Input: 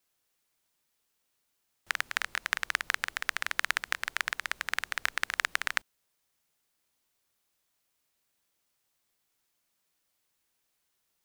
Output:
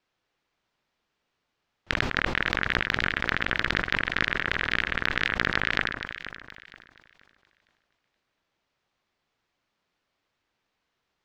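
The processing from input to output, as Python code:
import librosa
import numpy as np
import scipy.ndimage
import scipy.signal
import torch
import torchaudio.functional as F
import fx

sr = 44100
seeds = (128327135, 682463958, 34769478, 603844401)

p1 = fx.tracing_dist(x, sr, depth_ms=0.25)
p2 = fx.high_shelf(p1, sr, hz=9600.0, db=-4.0)
p3 = fx.over_compress(p2, sr, threshold_db=-30.0, ratio=-1.0)
p4 = p2 + F.gain(torch.from_numpy(p3), 0.0).numpy()
p5 = fx.air_absorb(p4, sr, metres=190.0)
p6 = p5 + fx.echo_alternate(p5, sr, ms=237, hz=1600.0, feedback_pct=55, wet_db=-6.0, dry=0)
y = fx.sustainer(p6, sr, db_per_s=56.0)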